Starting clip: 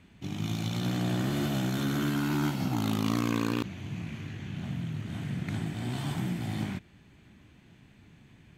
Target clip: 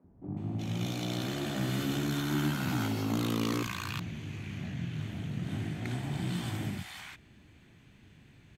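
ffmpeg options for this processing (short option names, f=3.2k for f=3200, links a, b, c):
-filter_complex "[0:a]asettb=1/sr,asplit=3[a][b][c];[a]atrim=end=0.854[d];[b]atrim=start=0.85:end=1.55,asetpts=PTS-STARTPTS,afade=t=in:d=0.004:c=qsin,afade=t=out:st=0.696:d=0.004:c=qsin,lowshelf=f=210:g=-7[e];[c]atrim=start=1.546[f];[d][e]acrossfade=d=0.004:c1=hsin:c2=qsin[g];[g][f]acrossfade=d=0.004:c1=qsin:c2=hsin,acrossover=split=200|910[h][i][j];[h]adelay=40[k];[j]adelay=370[l];[k][i][l]amix=inputs=3:normalize=0"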